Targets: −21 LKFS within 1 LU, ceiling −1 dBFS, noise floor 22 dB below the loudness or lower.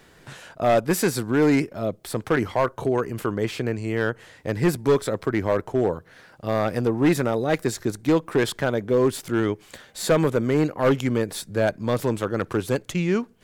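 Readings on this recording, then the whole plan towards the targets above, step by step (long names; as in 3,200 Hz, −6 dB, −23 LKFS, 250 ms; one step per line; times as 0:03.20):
share of clipped samples 1.3%; peaks flattened at −13.0 dBFS; integrated loudness −23.5 LKFS; sample peak −13.0 dBFS; target loudness −21.0 LKFS
→ clipped peaks rebuilt −13 dBFS
level +2.5 dB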